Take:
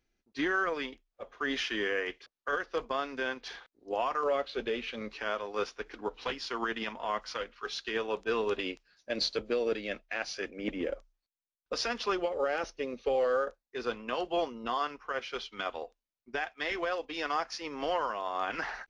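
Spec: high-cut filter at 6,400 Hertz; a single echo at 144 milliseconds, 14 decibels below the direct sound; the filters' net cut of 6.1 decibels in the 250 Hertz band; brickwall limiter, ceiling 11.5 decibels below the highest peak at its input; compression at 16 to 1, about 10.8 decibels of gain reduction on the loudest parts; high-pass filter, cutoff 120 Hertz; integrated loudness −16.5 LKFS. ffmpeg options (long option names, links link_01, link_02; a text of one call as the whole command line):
ffmpeg -i in.wav -af "highpass=120,lowpass=6400,equalizer=frequency=250:width_type=o:gain=-8.5,acompressor=threshold=-37dB:ratio=16,alimiter=level_in=12dB:limit=-24dB:level=0:latency=1,volume=-12dB,aecho=1:1:144:0.2,volume=30dB" out.wav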